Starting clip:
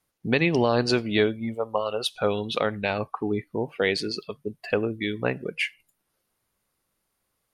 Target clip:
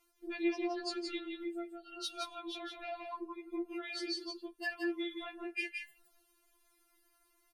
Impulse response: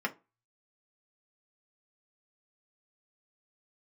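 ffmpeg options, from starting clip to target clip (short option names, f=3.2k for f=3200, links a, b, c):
-filter_complex "[0:a]asettb=1/sr,asplit=3[a][b][c];[a]atrim=end=3.244[d];[b]atrim=start=3.24:end=3.85,asetpts=PTS-STARTPTS,afade=t=in:d=0.004:c=qsin,afade=t=out:st=0.606:d=0.004:c=qsin,aecho=1:1:6.6:0.85,atrim=end_sample=26901[e];[c]atrim=start=3.846[f];[d][e]acrossfade=d=0.004:c1=hsin:c2=qsin[g];[g][f]acrossfade=d=0.004:c1=qsin:c2=hsin,asettb=1/sr,asplit=3[h][i][j];[h]atrim=end=4.594[k];[i]atrim=start=4.59:end=5.35,asetpts=PTS-STARTPTS,afade=t=in:d=0.004:c=qsin,afade=t=out:st=0.756:d=0.004:c=qsin,tiltshelf=f=970:g=-3.5[l];[j]atrim=start=5.346[m];[k][l]acrossfade=d=0.004:c1=hsin:c2=qsin[n];[n][m]acrossfade=d=0.004:c1=qsin:c2=hsin,acompressor=threshold=-37dB:ratio=6,alimiter=level_in=6dB:limit=-24dB:level=0:latency=1:release=204,volume=-6dB,asplit=3[o][p][q];[o]afade=t=out:st=1.37:d=0.02[r];[p]asuperstop=centerf=930:order=8:qfactor=1.3,afade=t=in:st=1.37:d=0.02,afade=t=out:st=1.96:d=0.02[s];[q]afade=t=in:st=1.96:d=0.02[t];[r][s][t]amix=inputs=3:normalize=0,aecho=1:1:170:0.562,afftfilt=real='re*4*eq(mod(b,16),0)':imag='im*4*eq(mod(b,16),0)':win_size=2048:overlap=0.75,volume=5.5dB"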